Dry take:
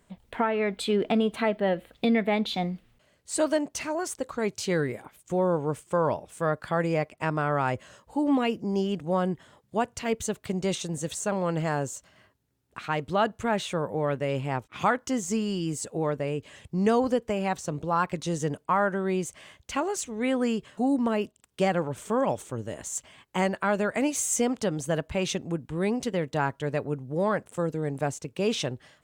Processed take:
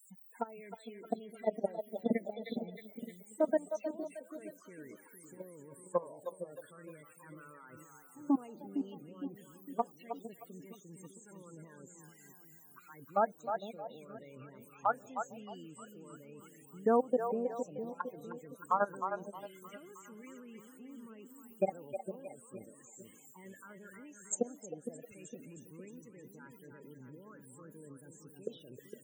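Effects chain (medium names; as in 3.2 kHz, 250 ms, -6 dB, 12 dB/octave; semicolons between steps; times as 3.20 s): zero-crossing glitches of -24 dBFS; high-pass 220 Hz 12 dB/octave; level held to a coarse grid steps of 23 dB; loudest bins only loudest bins 16; on a send: two-band feedback delay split 490 Hz, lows 459 ms, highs 312 ms, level -6 dB; on the sum: touch-sensitive phaser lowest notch 500 Hz, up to 4.2 kHz, full sweep at -27 dBFS; trim -2 dB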